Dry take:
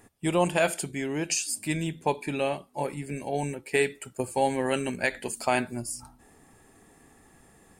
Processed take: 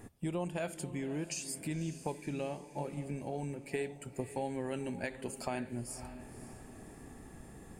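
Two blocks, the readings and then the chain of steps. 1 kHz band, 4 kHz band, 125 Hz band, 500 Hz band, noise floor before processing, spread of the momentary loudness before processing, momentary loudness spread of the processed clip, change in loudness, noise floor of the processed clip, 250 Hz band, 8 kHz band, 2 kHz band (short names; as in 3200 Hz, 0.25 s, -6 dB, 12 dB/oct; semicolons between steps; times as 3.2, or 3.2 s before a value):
-13.5 dB, -13.0 dB, -5.5 dB, -11.0 dB, -58 dBFS, 8 LU, 14 LU, -10.5 dB, -53 dBFS, -7.5 dB, -11.5 dB, -14.5 dB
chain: low shelf 460 Hz +10 dB; compressor 2.5:1, threshold -41 dBFS, peak gain reduction 18 dB; diffused feedback echo 0.536 s, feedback 43%, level -13 dB; gain -1 dB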